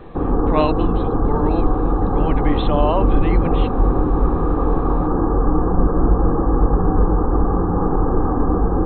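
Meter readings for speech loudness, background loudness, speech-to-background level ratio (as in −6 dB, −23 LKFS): −24.5 LKFS, −19.5 LKFS, −5.0 dB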